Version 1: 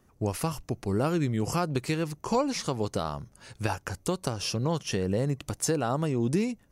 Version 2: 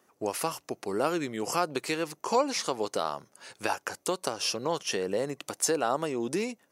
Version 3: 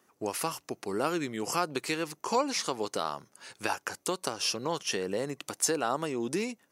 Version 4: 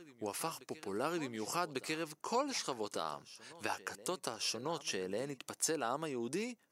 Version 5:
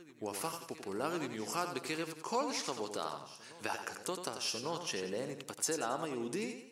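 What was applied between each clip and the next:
HPF 390 Hz 12 dB/oct; gain +2.5 dB
bell 590 Hz -4 dB 0.98 oct
reverse echo 1.147 s -18 dB; gain -7 dB
warbling echo 90 ms, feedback 43%, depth 58 cents, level -8 dB

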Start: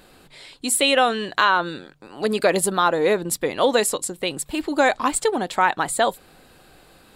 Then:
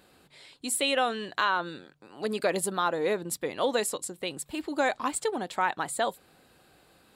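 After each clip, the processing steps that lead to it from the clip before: HPF 60 Hz; gain -8.5 dB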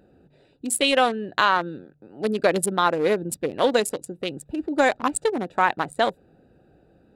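Wiener smoothing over 41 samples; gain +8 dB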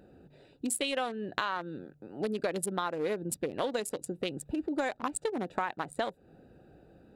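compressor 5:1, threshold -30 dBFS, peak gain reduction 15 dB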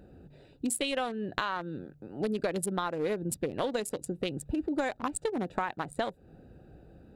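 low shelf 130 Hz +11 dB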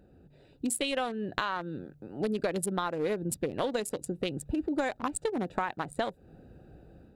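AGC gain up to 6 dB; gain -5.5 dB

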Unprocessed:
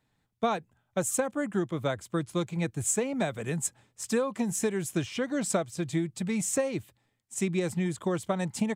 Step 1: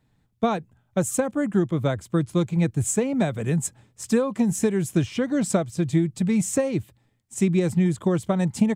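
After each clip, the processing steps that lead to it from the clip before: low shelf 350 Hz +10 dB; gain +1.5 dB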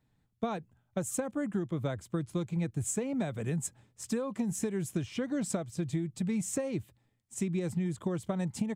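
compressor, threshold -21 dBFS, peak gain reduction 7.5 dB; gain -7 dB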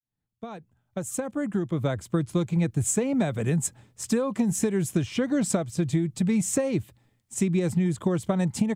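opening faded in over 2.10 s; gain +8 dB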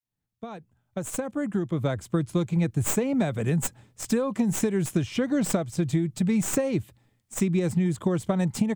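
tracing distortion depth 0.07 ms

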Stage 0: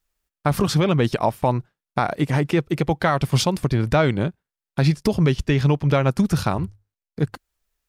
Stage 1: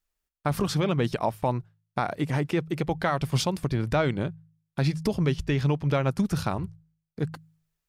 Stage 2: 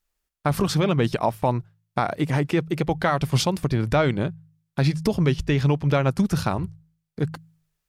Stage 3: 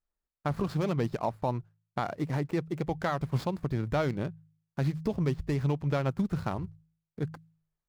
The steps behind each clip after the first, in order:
de-hum 53.07 Hz, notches 3; gain -6 dB
wow and flutter 26 cents; gain +4 dB
median filter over 15 samples; gain -8 dB

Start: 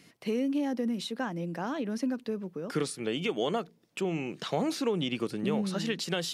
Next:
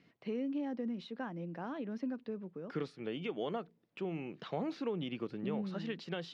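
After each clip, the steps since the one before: air absorption 250 m; gain -7 dB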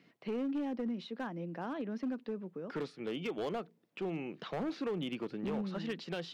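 HPF 150 Hz 12 dB/oct; overloaded stage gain 33.5 dB; gain +2.5 dB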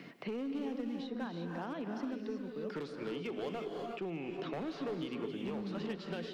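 non-linear reverb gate 0.39 s rising, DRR 3.5 dB; three-band squash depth 70%; gain -3.5 dB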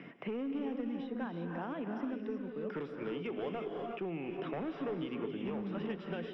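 polynomial smoothing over 25 samples; gain +1 dB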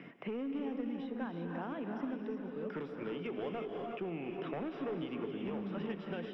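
multi-head echo 0.164 s, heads second and third, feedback 65%, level -16.5 dB; ending taper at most 190 dB/s; gain -1 dB

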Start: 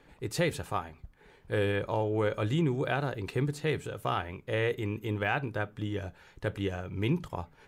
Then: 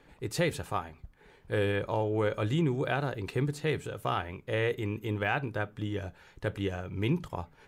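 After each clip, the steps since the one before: nothing audible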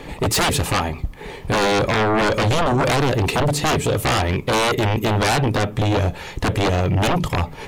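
bell 1500 Hz -12.5 dB 0.23 oct; in parallel at +1.5 dB: compressor, threshold -37 dBFS, peak gain reduction 13 dB; on the sum: sine folder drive 14 dB, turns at -14.5 dBFS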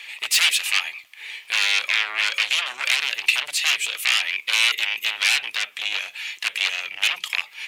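resonant high-pass 2500 Hz, resonance Q 2.7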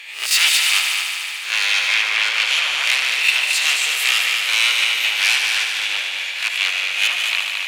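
spectral swells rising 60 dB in 0.38 s; multi-head echo 74 ms, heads all three, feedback 68%, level -9 dB

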